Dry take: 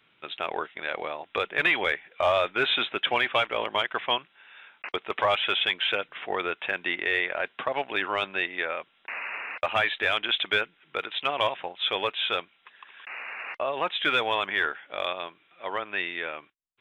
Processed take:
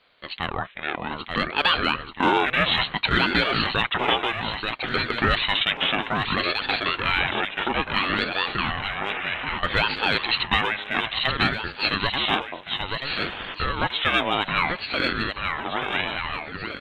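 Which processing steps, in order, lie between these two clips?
repeating echo 883 ms, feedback 52%, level −4.5 dB
ring modulator whose carrier an LFO sweeps 530 Hz, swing 65%, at 0.6 Hz
level +5.5 dB

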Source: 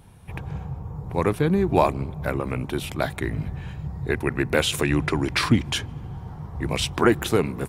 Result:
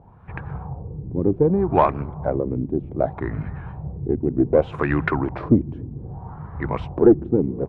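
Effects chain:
auto-filter low-pass sine 0.65 Hz 290–1,600 Hz
harmonic generator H 4 −26 dB, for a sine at −2 dBFS
wow of a warped record 78 rpm, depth 100 cents

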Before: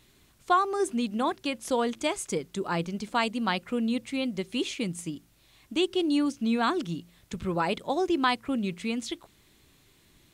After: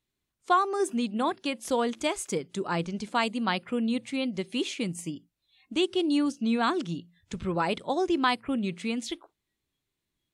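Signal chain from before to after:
noise reduction from a noise print of the clip's start 23 dB

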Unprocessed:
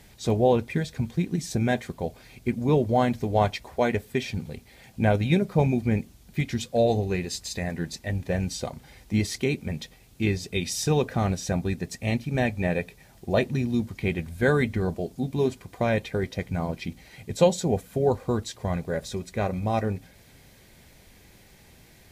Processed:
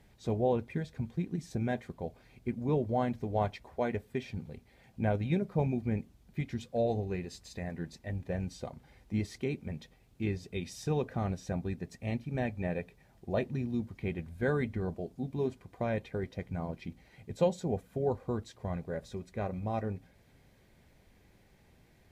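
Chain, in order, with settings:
high-shelf EQ 2,800 Hz −10.5 dB
level −8 dB

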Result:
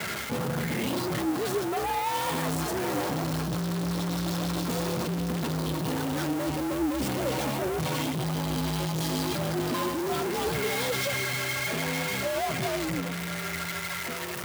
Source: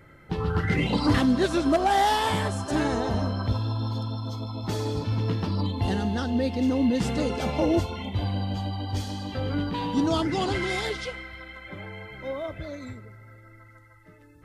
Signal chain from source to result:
spike at every zero crossing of −18.5 dBFS
high-shelf EQ 2,200 Hz −10 dB
reversed playback
downward compressor, threshold −31 dBFS, peak gain reduction 13.5 dB
reversed playback
leveller curve on the samples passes 5
flanger 1.8 Hz, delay 1.3 ms, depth 4.2 ms, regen +73%
frequency shifter +64 Hz

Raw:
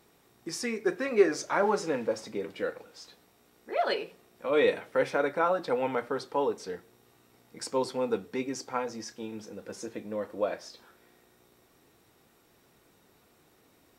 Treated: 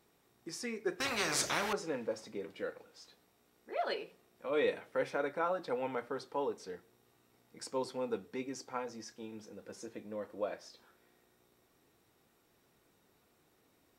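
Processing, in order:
0:01.00–0:01.73: every bin compressed towards the loudest bin 4 to 1
level −7.5 dB

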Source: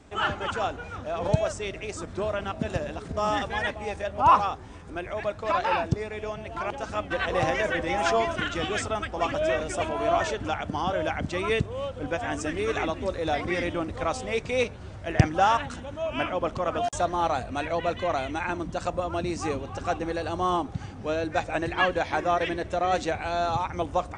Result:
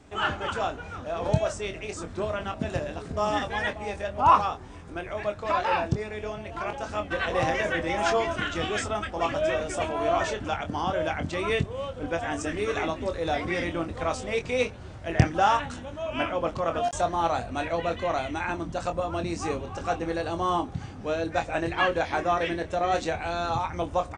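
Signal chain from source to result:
double-tracking delay 24 ms −7.5 dB
level −1 dB

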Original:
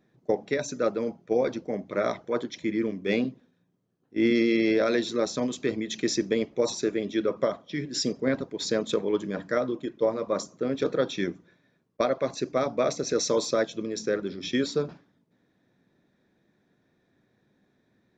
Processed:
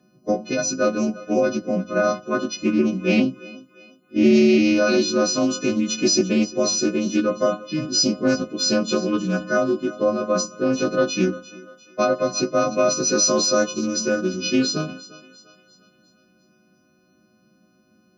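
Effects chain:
every partial snapped to a pitch grid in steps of 3 semitones
high-shelf EQ 6,600 Hz −6.5 dB
notch filter 2,100 Hz, Q 14
notch comb filter 440 Hz
in parallel at +1.5 dB: brickwall limiter −19.5 dBFS, peak gain reduction 7.5 dB
on the sum: thirty-one-band graphic EQ 100 Hz −6 dB, 200 Hz +9 dB, 400 Hz +6 dB
on a send: feedback echo with a high-pass in the loop 348 ms, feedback 47%, high-pass 420 Hz, level −17 dB
on the sum: highs frequency-modulated by the lows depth 0.12 ms

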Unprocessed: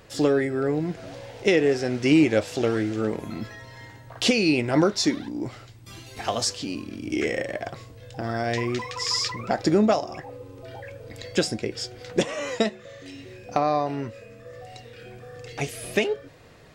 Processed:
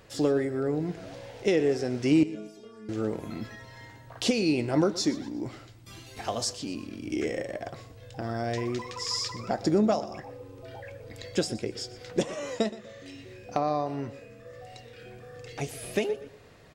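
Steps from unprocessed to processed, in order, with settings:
dynamic equaliser 2,200 Hz, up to −6 dB, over −39 dBFS, Q 0.73
0:02.23–0:02.89: stiff-string resonator 210 Hz, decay 0.59 s, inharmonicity 0.008
on a send: repeating echo 121 ms, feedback 35%, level −17 dB
on the sum: level −3.5 dB

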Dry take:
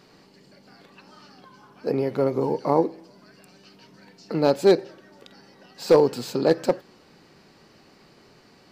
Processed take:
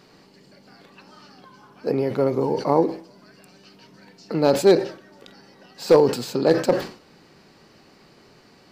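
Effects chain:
level that may fall only so fast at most 130 dB per second
level +1.5 dB

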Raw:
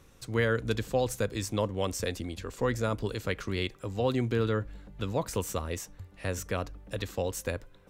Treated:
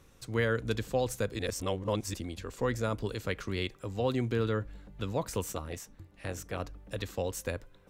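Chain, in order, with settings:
0:01.39–0:02.14: reverse
0:05.52–0:06.60: amplitude modulation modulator 230 Hz, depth 50%
level −2 dB

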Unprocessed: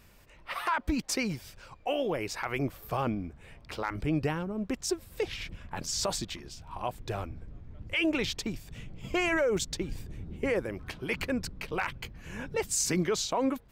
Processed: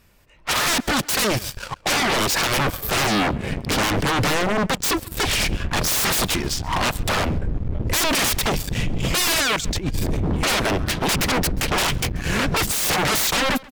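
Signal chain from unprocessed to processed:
noise reduction from a noise print of the clip's start 7 dB
0:02.91–0:03.87: parametric band 240 Hz +14 dB 1.9 octaves
leveller curve on the samples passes 3
0:09.56–0:10.33: compressor whose output falls as the input rises −30 dBFS, ratio −0.5
sine wavefolder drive 17 dB, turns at −9.5 dBFS
slap from a distant wall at 23 metres, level −22 dB
level −7 dB

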